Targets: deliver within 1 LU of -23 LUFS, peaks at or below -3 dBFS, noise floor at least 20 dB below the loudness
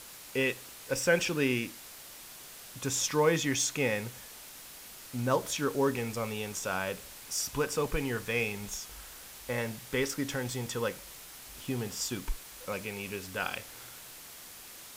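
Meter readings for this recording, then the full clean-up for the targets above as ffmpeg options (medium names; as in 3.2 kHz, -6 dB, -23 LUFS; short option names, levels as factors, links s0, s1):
noise floor -49 dBFS; noise floor target -52 dBFS; loudness -32.0 LUFS; peak level -12.5 dBFS; loudness target -23.0 LUFS
-> -af "afftdn=nr=6:nf=-49"
-af "volume=2.82"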